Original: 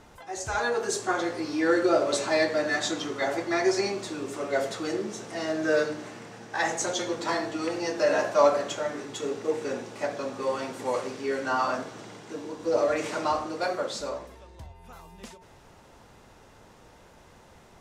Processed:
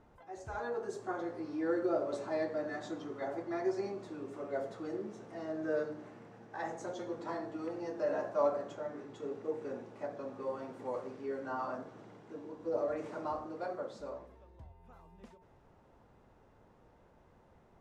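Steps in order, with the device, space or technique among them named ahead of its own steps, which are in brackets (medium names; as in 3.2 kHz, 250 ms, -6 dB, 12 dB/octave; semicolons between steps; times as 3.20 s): 8.76–9.31 s: low-pass 9.2 kHz; dynamic bell 2.5 kHz, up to -4 dB, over -42 dBFS, Q 1.2; through cloth (treble shelf 2.4 kHz -18 dB); trim -8.5 dB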